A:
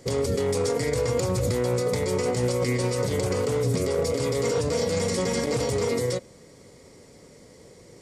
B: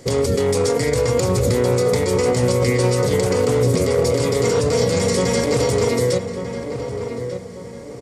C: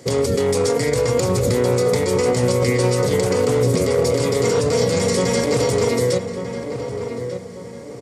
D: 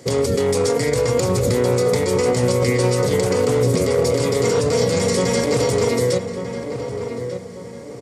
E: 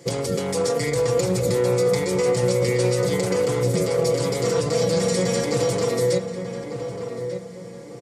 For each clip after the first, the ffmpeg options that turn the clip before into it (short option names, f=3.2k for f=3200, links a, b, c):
-filter_complex "[0:a]asplit=2[a][b];[b]adelay=1193,lowpass=f=1.9k:p=1,volume=-8dB,asplit=2[c][d];[d]adelay=1193,lowpass=f=1.9k:p=1,volume=0.4,asplit=2[e][f];[f]adelay=1193,lowpass=f=1.9k:p=1,volume=0.4,asplit=2[g][h];[h]adelay=1193,lowpass=f=1.9k:p=1,volume=0.4,asplit=2[i][j];[j]adelay=1193,lowpass=f=1.9k:p=1,volume=0.4[k];[a][c][e][g][i][k]amix=inputs=6:normalize=0,volume=6.5dB"
-af "highpass=87"
-af anull
-af "aecho=1:1:5.9:0.72,volume=-5dB"